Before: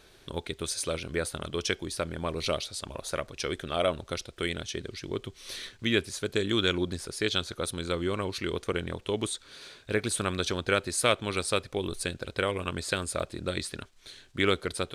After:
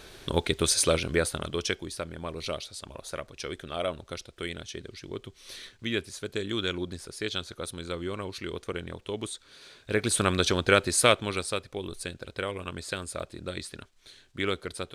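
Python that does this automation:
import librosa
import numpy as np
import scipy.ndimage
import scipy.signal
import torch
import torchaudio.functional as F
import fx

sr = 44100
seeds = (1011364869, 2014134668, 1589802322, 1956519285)

y = fx.gain(x, sr, db=fx.line((0.83, 8.5), (2.07, -4.0), (9.63, -4.0), (10.19, 5.0), (11.0, 5.0), (11.59, -4.0)))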